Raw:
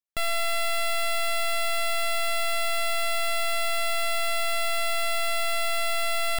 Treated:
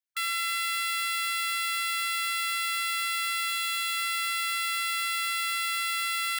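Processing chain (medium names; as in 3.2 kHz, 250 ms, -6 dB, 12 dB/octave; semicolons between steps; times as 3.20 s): brick-wall FIR high-pass 1.3 kHz; 3.47–3.97 s: doubling 16 ms -12 dB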